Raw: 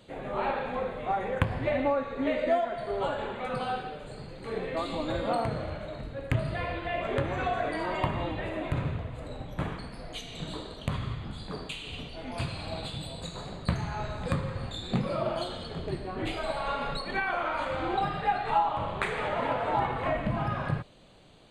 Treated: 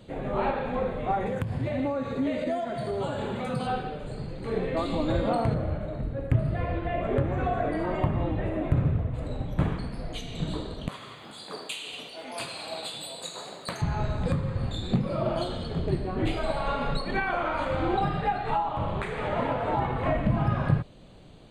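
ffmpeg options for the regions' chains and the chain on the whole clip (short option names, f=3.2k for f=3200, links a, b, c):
-filter_complex "[0:a]asettb=1/sr,asplit=3[a][b][c];[a]atrim=end=1.264[d];[b]atrim=start=1.26:end=3.67,asetpts=PTS-STARTPTS,afade=t=in:d=0.004:c=qsin,afade=t=out:st=2.406:d=0.004:c=qsin,highpass=98,bass=f=250:g=7,treble=f=4k:g=12,acompressor=threshold=-32dB:ratio=2.5:attack=3.2:release=140:knee=1:detection=peak[e];[c]atrim=start=3.666[f];[d][e]acrossfade=d=0.004:c1=hsin:c2=qsin[g];[g][f]acrossfade=d=0.004:c1=qsin:c2=hsin,asettb=1/sr,asplit=3[h][i][j];[h]atrim=end=5.544[k];[i]atrim=start=5.54:end=9.14,asetpts=PTS-STARTPTS,afade=t=in:d=0.004:c=qsin,afade=t=out:st=3.596:d=0.004:c=qsin,equalizer=f=4.8k:t=o:w=2.3:g=-8.5,bandreject=f=970:w=20[l];[j]atrim=start=9.136[m];[k][l]acrossfade=d=0.004:c1=hsin:c2=qsin[n];[n][m]acrossfade=d=0.004:c1=qsin:c2=hsin,asettb=1/sr,asplit=3[o][p][q];[o]atrim=end=10.884[r];[p]atrim=start=10.88:end=13.82,asetpts=PTS-STARTPTS,afade=t=in:d=0.004:c=qsin,afade=t=out:st=2.936:d=0.004:c=qsin,highpass=500,aemphasis=mode=production:type=50kf,asoftclip=type=hard:threshold=-18.5dB[s];[q]atrim=start=13.816[t];[r][s]acrossfade=d=0.004:c1=hsin:c2=qsin[u];[u][t]acrossfade=d=0.004:c1=qsin:c2=hsin,alimiter=limit=-19dB:level=0:latency=1:release=421,lowshelf=f=440:g=9"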